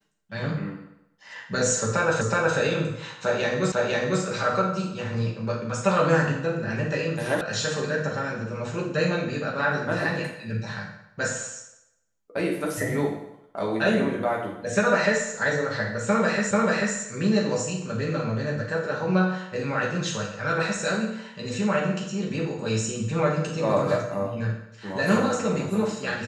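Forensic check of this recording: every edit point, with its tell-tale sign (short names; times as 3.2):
2.21 repeat of the last 0.37 s
3.72 repeat of the last 0.5 s
7.41 sound cut off
16.51 repeat of the last 0.44 s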